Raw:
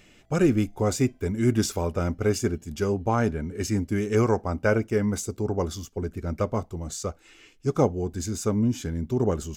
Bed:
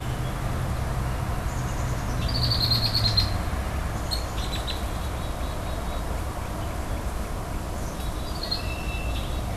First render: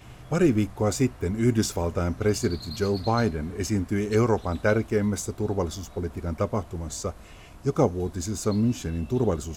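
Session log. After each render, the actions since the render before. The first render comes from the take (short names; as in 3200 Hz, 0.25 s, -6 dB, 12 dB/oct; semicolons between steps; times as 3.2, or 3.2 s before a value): add bed -17 dB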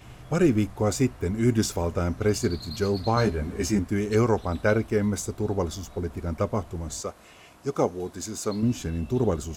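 3.15–3.79 doubler 15 ms -2.5 dB; 4.39–5 notch 6800 Hz; 7.01–8.63 HPF 320 Hz 6 dB/oct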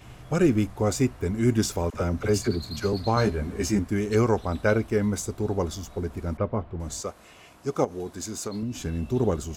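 1.9–2.93 dispersion lows, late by 43 ms, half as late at 620 Hz; 6.37–6.8 air absorption 390 m; 7.84–8.76 compressor, threshold -27 dBFS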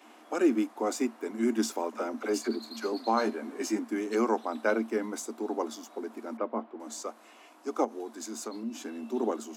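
rippled Chebyshev high-pass 220 Hz, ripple 6 dB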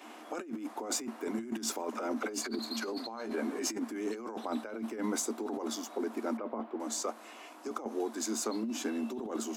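negative-ratio compressor -36 dBFS, ratio -1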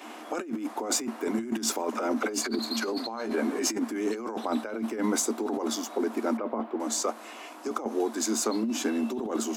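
gain +6.5 dB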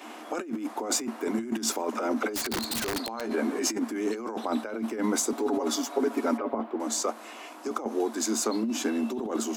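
2.32–3.21 wrapped overs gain 24 dB; 5.32–6.55 comb 7.2 ms, depth 81%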